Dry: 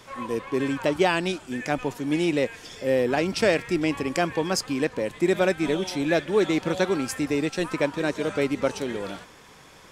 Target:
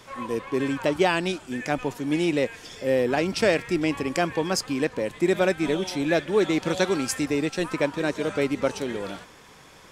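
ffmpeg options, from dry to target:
-filter_complex "[0:a]asettb=1/sr,asplit=3[a][b][c];[a]atrim=end=6.624[d];[b]atrim=start=6.62:end=7.26,asetpts=PTS-STARTPTS,afade=t=in:d=0.004:c=qsin,afade=t=out:st=0.636:d=0.004:c=qsin,equalizer=f=6.3k:t=o:w=2.2:g=5[e];[c]atrim=start=7.256[f];[d][e]acrossfade=d=0.004:c1=hsin:c2=qsin[g];[g][f]acrossfade=d=0.004:c1=qsin:c2=hsin"

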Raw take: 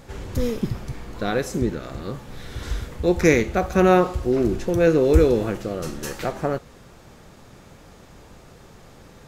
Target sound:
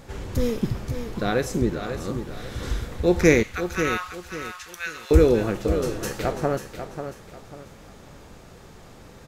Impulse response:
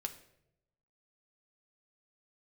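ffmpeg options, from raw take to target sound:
-filter_complex "[0:a]asettb=1/sr,asplit=3[a][b][c];[a]atrim=end=3.434[d];[b]atrim=start=3.43:end=5.11,asetpts=PTS-STARTPTS,afade=t=in:d=0.004:c=qsin,afade=t=out:st=1.676:d=0.004:c=qsin,highpass=f=1.3k:w=0.5412,highpass=f=1.3k:w=1.3066[e];[c]atrim=start=5.106[f];[d][e]acrossfade=d=0.004:c1=hsin:c2=qsin[g];[g][f]acrossfade=d=0.004:c1=qsin:c2=hsin,asplit=2[h][i];[i]aecho=0:1:542|1084|1626|2168:0.355|0.11|0.0341|0.0106[j];[h][j]amix=inputs=2:normalize=0"

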